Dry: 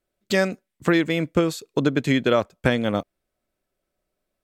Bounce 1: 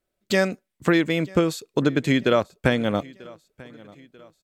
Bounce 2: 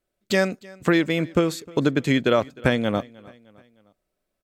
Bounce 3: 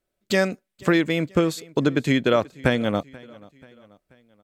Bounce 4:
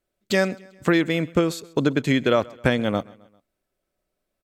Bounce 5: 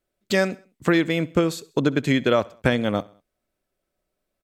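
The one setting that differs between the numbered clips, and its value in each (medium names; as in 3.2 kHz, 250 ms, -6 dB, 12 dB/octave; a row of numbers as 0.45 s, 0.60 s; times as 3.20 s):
feedback delay, time: 940 ms, 307 ms, 484 ms, 132 ms, 66 ms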